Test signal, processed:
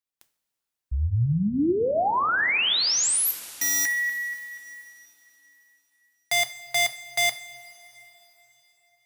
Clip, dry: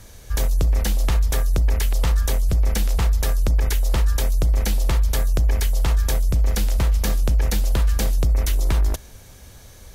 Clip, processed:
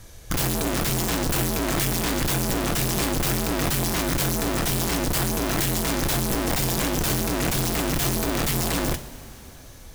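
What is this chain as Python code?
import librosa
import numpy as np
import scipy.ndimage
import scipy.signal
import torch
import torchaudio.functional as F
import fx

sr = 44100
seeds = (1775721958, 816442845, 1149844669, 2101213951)

y = (np.mod(10.0 ** (18.0 / 20.0) * x + 1.0, 2.0) - 1.0) / 10.0 ** (18.0 / 20.0)
y = fx.rev_double_slope(y, sr, seeds[0], early_s=0.36, late_s=4.0, knee_db=-17, drr_db=8.0)
y = F.gain(torch.from_numpy(y), -2.0).numpy()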